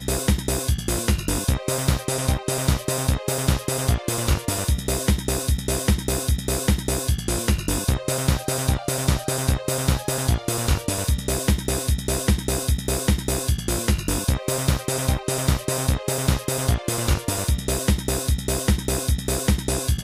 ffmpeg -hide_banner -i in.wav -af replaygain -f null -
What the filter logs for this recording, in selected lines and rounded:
track_gain = +7.7 dB
track_peak = 0.284